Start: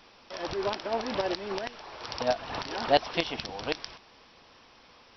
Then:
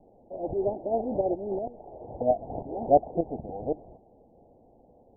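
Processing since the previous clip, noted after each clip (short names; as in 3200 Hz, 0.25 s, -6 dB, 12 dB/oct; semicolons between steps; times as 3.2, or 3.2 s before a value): steep low-pass 780 Hz 72 dB/oct; gain +4 dB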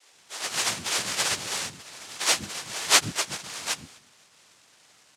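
frequency quantiser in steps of 3 st; noise vocoder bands 1; bands offset in time highs, lows 0.12 s, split 300 Hz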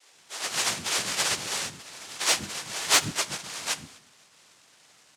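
soft clip -10.5 dBFS, distortion -17 dB; plate-style reverb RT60 0.55 s, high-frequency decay 0.75×, DRR 15 dB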